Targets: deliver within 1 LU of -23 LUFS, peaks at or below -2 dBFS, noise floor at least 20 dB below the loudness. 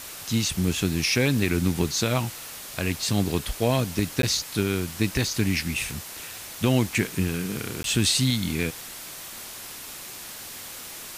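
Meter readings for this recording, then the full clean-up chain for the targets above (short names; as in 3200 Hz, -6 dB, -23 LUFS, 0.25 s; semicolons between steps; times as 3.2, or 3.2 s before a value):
dropouts 2; longest dropout 12 ms; noise floor -39 dBFS; noise floor target -45 dBFS; loudness -25.0 LUFS; peak -9.5 dBFS; loudness target -23.0 LUFS
-> interpolate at 4.22/7.83, 12 ms; denoiser 6 dB, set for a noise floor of -39 dBFS; gain +2 dB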